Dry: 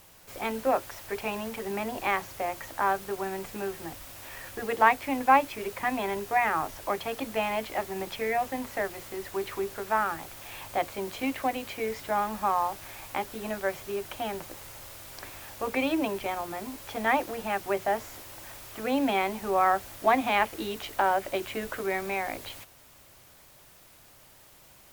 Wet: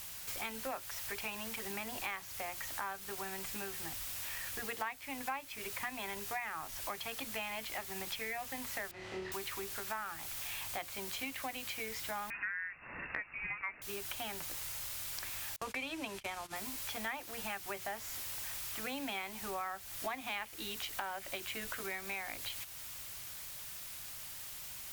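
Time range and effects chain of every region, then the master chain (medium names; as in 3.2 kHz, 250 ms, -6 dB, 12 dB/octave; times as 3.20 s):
8.91–9.32 s: high-pass 62 Hz + tape spacing loss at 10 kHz 32 dB + flutter echo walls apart 4.6 m, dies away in 0.75 s
12.30–13.82 s: tilt shelf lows -6 dB, about 880 Hz + frequency inversion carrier 2.7 kHz
15.56–16.56 s: Bessel low-pass 9 kHz + gate -38 dBFS, range -32 dB
whole clip: amplifier tone stack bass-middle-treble 5-5-5; compression 5:1, threshold -55 dBFS; trim +16 dB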